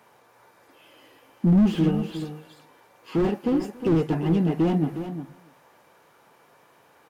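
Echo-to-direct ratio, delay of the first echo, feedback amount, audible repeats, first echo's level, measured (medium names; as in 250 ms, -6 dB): -9.5 dB, 283 ms, no regular repeats, 3, -22.5 dB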